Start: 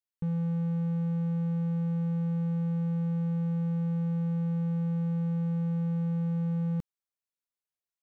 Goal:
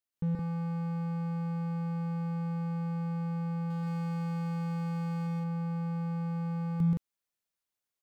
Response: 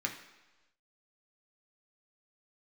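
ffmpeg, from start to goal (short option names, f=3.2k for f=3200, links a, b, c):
-filter_complex "[0:a]asettb=1/sr,asplit=3[a][b][c];[a]atrim=end=3.704[d];[b]atrim=start=3.7:end=5.27,asetpts=PTS-STARTPTS,afade=t=in:d=0.004:c=qsin,afade=t=out:st=1.566:d=0.004:c=qsin,highshelf=f=2.1k:g=9.5[e];[c]atrim=start=5.266[f];[d][e]acrossfade=d=0.004:c1=hsin:c2=qsin[g];[g][f]acrossfade=d=0.004:c1=qsin:c2=hsin,aecho=1:1:128.3|169.1:0.891|0.891"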